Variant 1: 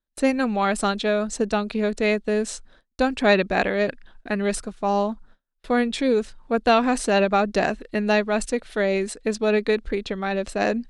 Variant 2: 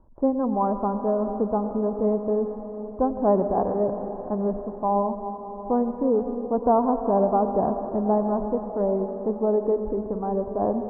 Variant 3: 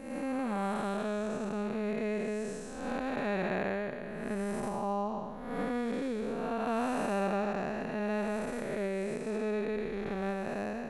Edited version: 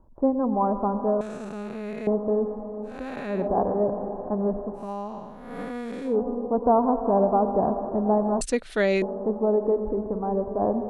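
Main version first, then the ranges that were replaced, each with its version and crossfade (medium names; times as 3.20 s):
2
1.21–2.07 s: from 3
2.94–3.37 s: from 3, crossfade 0.24 s
4.81–6.10 s: from 3, crossfade 0.16 s
8.41–9.02 s: from 1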